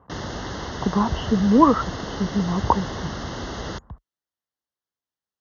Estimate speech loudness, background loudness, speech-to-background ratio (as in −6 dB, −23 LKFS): −21.5 LKFS, −32.0 LKFS, 10.5 dB